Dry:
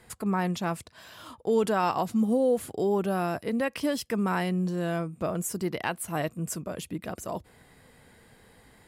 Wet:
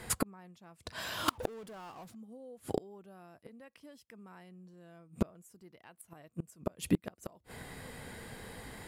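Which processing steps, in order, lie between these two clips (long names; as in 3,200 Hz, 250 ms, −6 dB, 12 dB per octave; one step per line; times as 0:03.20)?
0:01.28–0:02.15: power curve on the samples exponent 0.5
gate with flip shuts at −25 dBFS, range −35 dB
level +9 dB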